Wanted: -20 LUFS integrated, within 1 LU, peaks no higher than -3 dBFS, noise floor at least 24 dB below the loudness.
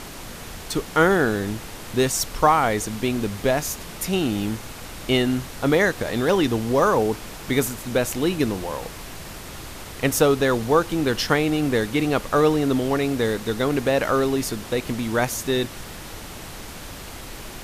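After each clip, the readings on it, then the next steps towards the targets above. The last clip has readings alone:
noise floor -37 dBFS; noise floor target -46 dBFS; loudness -22.0 LUFS; peak -3.5 dBFS; loudness target -20.0 LUFS
-> noise print and reduce 9 dB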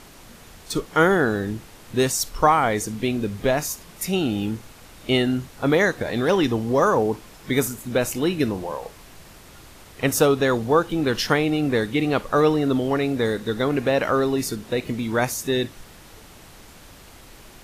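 noise floor -46 dBFS; noise floor target -47 dBFS
-> noise print and reduce 6 dB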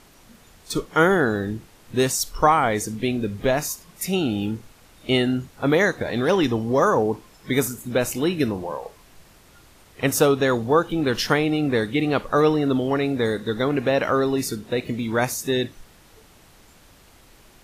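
noise floor -52 dBFS; loudness -22.5 LUFS; peak -3.5 dBFS; loudness target -20.0 LUFS
-> gain +2.5 dB; limiter -3 dBFS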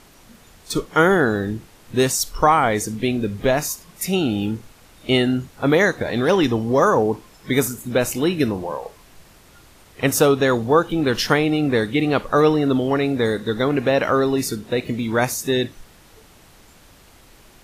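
loudness -20.0 LUFS; peak -3.0 dBFS; noise floor -50 dBFS

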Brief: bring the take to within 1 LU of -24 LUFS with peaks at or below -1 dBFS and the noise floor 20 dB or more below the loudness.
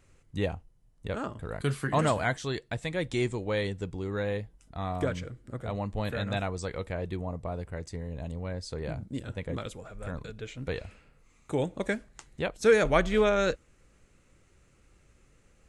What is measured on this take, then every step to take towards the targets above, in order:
loudness -31.5 LUFS; peak -10.0 dBFS; loudness target -24.0 LUFS
-> gain +7.5 dB

